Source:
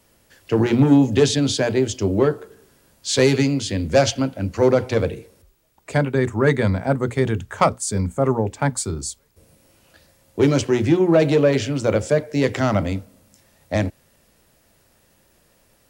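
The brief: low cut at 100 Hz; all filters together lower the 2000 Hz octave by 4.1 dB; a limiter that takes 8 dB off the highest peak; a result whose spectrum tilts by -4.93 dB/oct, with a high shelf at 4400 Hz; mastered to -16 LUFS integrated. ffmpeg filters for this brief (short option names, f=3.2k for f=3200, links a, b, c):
-af "highpass=100,equalizer=f=2k:t=o:g=-6.5,highshelf=f=4.4k:g=7,volume=6dB,alimiter=limit=-4.5dB:level=0:latency=1"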